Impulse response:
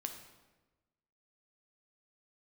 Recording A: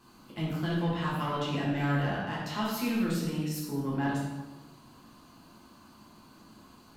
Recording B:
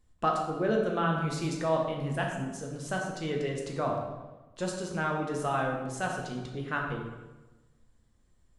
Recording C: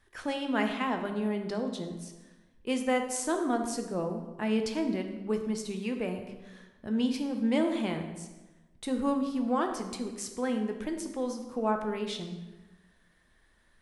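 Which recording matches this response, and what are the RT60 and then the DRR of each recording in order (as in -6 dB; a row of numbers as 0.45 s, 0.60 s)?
C; 1.2 s, 1.2 s, 1.2 s; -7.0 dB, -0.5 dB, 4.5 dB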